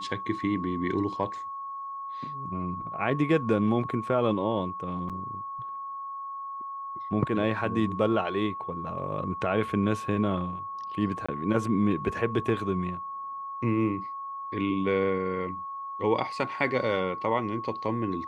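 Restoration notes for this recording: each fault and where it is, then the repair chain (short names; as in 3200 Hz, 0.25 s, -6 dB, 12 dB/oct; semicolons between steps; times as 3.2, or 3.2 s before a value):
tone 1100 Hz -34 dBFS
5.09–5.1 gap 7.2 ms
11.26–11.29 gap 25 ms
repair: notch 1100 Hz, Q 30; interpolate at 5.09, 7.2 ms; interpolate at 11.26, 25 ms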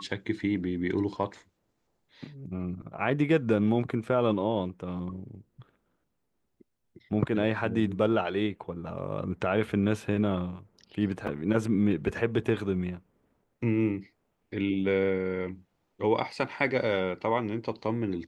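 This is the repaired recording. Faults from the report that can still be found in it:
none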